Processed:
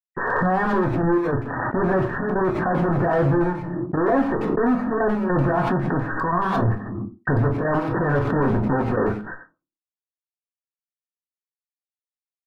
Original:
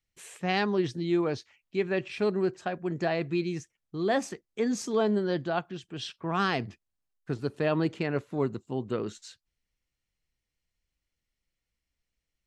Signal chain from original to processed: bell 1000 Hz +9 dB 0.46 oct; in parallel at -1 dB: compressor 4:1, threshold -39 dBFS, peak gain reduction 15.5 dB; on the sum: fuzz box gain 46 dB, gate -54 dBFS; step gate "xxxxxx.x." 102 bpm -12 dB; brick-wall FIR low-pass 1900 Hz; speakerphone echo 90 ms, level -9 dB; on a send at -3 dB: reverb RT60 0.30 s, pre-delay 4 ms; on the sum: backwards sustainer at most 27 dB/s; gain -8 dB

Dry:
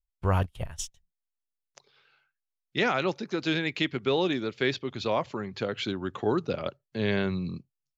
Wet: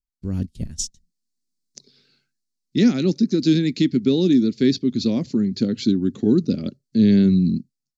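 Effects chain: EQ curve 120 Hz 0 dB, 240 Hz +14 dB, 630 Hz -15 dB, 1000 Hz -23 dB, 1900 Hz -12 dB, 3100 Hz -12 dB, 4400 Hz +5 dB, 7400 Hz +3 dB, 12000 Hz -7 dB; AGC gain up to 15 dB; gain -5 dB

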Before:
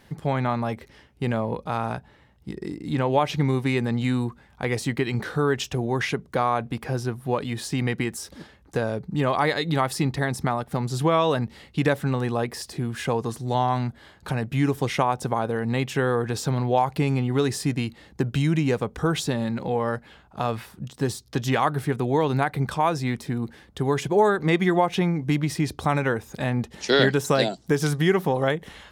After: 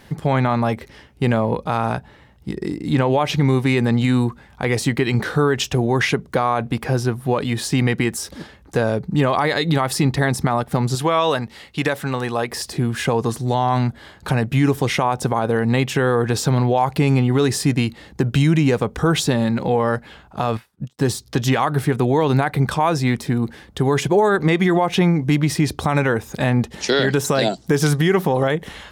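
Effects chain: 10.95–12.51 low shelf 420 Hz -9.5 dB; limiter -15 dBFS, peak gain reduction 9 dB; 20.57–20.99 upward expander 2.5:1, over -51 dBFS; gain +7.5 dB

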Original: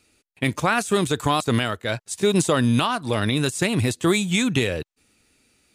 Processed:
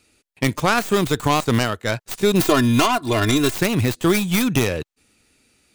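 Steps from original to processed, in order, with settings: tracing distortion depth 0.33 ms; 2.4–3.55 comb 2.9 ms, depth 86%; gain +2 dB

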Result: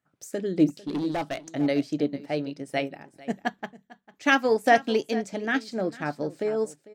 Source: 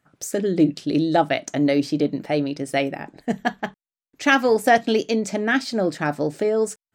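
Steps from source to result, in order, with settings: HPF 57 Hz; 0.68–1.4 hard clip -18.5 dBFS, distortion -17 dB; on a send: echo 0.449 s -14 dB; on the sum: upward expander 1.5:1, over -32 dBFS; gain -2.5 dB

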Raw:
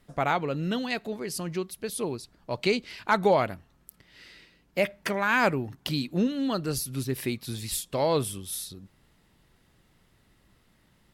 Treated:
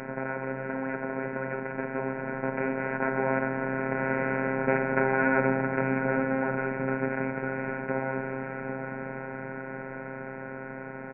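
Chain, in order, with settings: per-bin compression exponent 0.2; Doppler pass-by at 4.78, 8 m/s, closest 9.4 m; in parallel at +1 dB: compressor, threshold -26 dBFS, peak gain reduction 14 dB; on the sum: steep low-pass 2400 Hz 96 dB/oct; resonator 490 Hz, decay 0.15 s, harmonics all, mix 60%; on a send: echo 0.761 s -10.5 dB; on the sum: robotiser 133 Hz; notch 1200 Hz, Q 7.2; small resonant body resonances 200/1400 Hz, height 9 dB, ringing for 40 ms; gain -2 dB

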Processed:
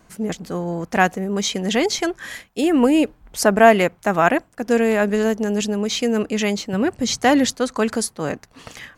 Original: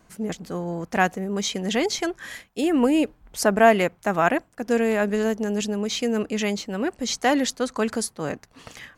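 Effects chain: 6.73–7.53 bell 110 Hz +14.5 dB 1.1 oct; gain +4 dB

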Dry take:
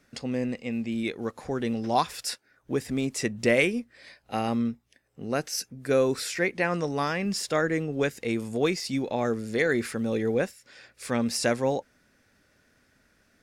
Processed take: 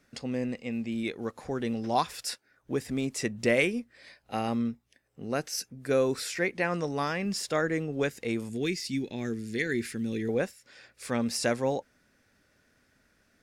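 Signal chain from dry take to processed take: 8.49–10.29 band shelf 820 Hz -14 dB; gain -2.5 dB

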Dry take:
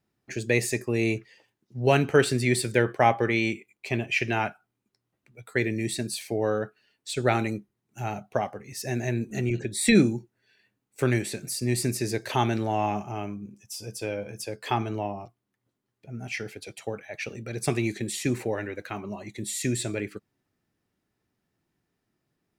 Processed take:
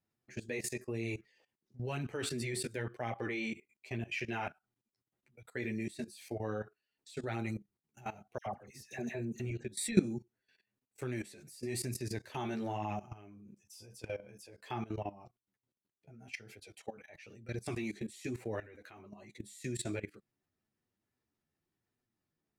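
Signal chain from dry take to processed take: chorus voices 2, 1 Hz, delay 11 ms, depth 3 ms; level quantiser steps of 17 dB; 8.38–9.4 dispersion lows, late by 81 ms, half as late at 1600 Hz; gain -3 dB

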